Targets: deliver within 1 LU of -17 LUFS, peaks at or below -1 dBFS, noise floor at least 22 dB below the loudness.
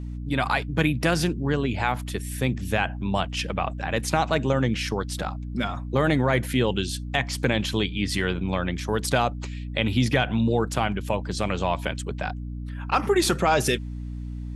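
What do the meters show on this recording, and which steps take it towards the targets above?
hum 60 Hz; highest harmonic 300 Hz; hum level -30 dBFS; loudness -25.5 LUFS; peak level -4.5 dBFS; loudness target -17.0 LUFS
-> de-hum 60 Hz, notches 5; trim +8.5 dB; peak limiter -1 dBFS

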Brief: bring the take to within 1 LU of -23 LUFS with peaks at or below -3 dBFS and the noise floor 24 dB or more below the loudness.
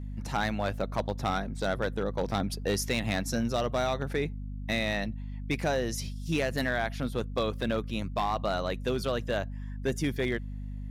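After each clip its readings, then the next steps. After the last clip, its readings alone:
clipped samples 0.8%; clipping level -21.0 dBFS; hum 50 Hz; highest harmonic 250 Hz; hum level -35 dBFS; loudness -31.0 LUFS; peak level -21.0 dBFS; loudness target -23.0 LUFS
-> clip repair -21 dBFS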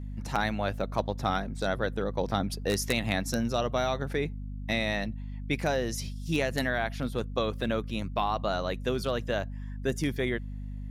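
clipped samples 0.0%; hum 50 Hz; highest harmonic 250 Hz; hum level -35 dBFS
-> de-hum 50 Hz, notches 5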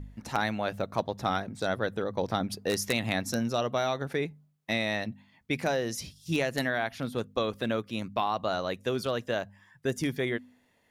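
hum not found; loudness -31.0 LUFS; peak level -11.5 dBFS; loudness target -23.0 LUFS
-> trim +8 dB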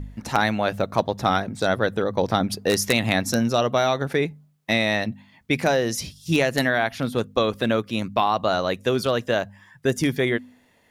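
loudness -23.0 LUFS; peak level -3.5 dBFS; noise floor -60 dBFS

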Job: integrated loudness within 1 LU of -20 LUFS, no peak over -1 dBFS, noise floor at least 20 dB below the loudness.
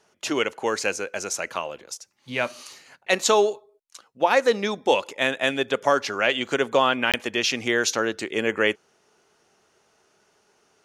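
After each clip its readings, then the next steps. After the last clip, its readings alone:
dropouts 1; longest dropout 17 ms; loudness -23.5 LUFS; peak level -6.0 dBFS; loudness target -20.0 LUFS
-> interpolate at 7.12 s, 17 ms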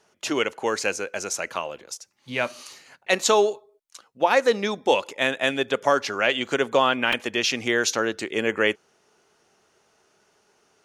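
dropouts 0; loudness -23.5 LUFS; peak level -6.0 dBFS; loudness target -20.0 LUFS
-> trim +3.5 dB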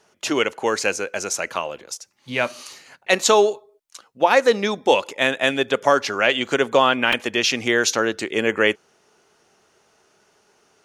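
loudness -20.0 LUFS; peak level -2.5 dBFS; noise floor -62 dBFS

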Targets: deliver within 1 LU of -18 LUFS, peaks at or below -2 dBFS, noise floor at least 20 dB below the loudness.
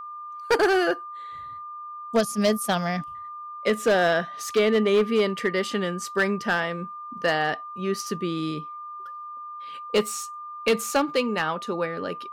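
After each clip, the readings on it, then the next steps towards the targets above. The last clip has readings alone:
clipped samples 1.2%; clipping level -15.0 dBFS; steady tone 1.2 kHz; tone level -35 dBFS; loudness -25.0 LUFS; peak level -15.0 dBFS; loudness target -18.0 LUFS
-> clip repair -15 dBFS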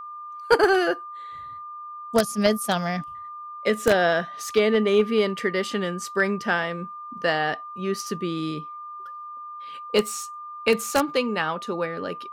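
clipped samples 0.0%; steady tone 1.2 kHz; tone level -35 dBFS
-> band-stop 1.2 kHz, Q 30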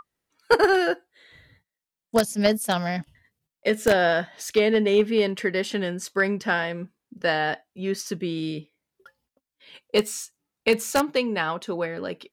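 steady tone not found; loudness -24.5 LUFS; peak level -6.0 dBFS; loudness target -18.0 LUFS
-> trim +6.5 dB; peak limiter -2 dBFS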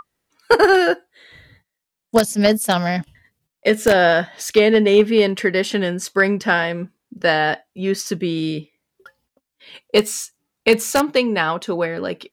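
loudness -18.0 LUFS; peak level -2.0 dBFS; noise floor -83 dBFS

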